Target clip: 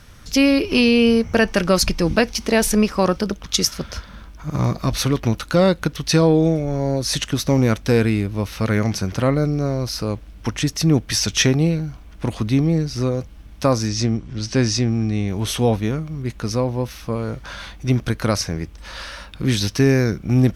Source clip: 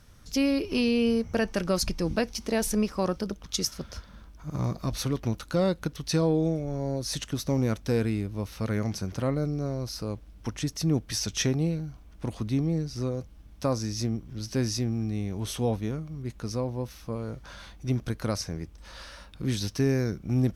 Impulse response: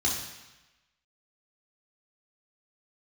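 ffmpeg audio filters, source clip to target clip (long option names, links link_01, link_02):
-filter_complex "[0:a]asettb=1/sr,asplit=3[link_01][link_02][link_03];[link_01]atrim=end=13.884[link_04];[link_02]atrim=start=13.88:end=15.28,asetpts=PTS-STARTPTS,afade=type=in:duration=0.004:curve=qsin,afade=type=out:start_time=1.396:duration=0.004:curve=qsin,lowpass=frequency=8400:width=0.5412,lowpass=frequency=8400:width=1.3066[link_05];[link_03]atrim=start=15.276[link_06];[link_04][link_05]acrossfade=duration=0.004:curve1=hsin:curve2=qsin[link_07];[link_07][link_06]acrossfade=duration=0.004:curve1=qsin:curve2=hsin,acrossover=split=2900[link_08][link_09];[link_08]crystalizer=i=5:c=0[link_10];[link_10][link_09]amix=inputs=2:normalize=0,volume=9dB"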